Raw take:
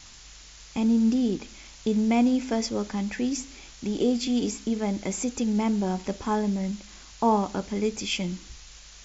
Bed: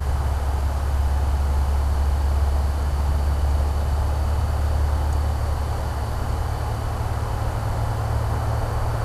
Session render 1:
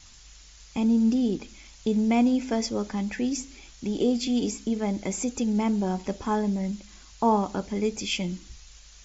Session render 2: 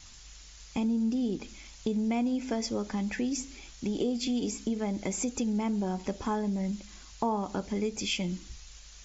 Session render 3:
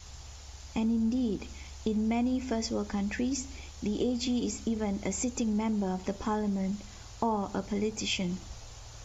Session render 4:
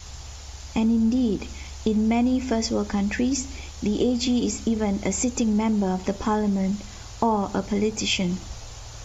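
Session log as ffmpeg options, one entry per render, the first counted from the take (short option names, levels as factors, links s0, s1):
-af "afftdn=nr=6:nf=-48"
-af "acompressor=threshold=0.0398:ratio=3"
-filter_complex "[1:a]volume=0.0473[s0];[0:a][s0]amix=inputs=2:normalize=0"
-af "volume=2.37"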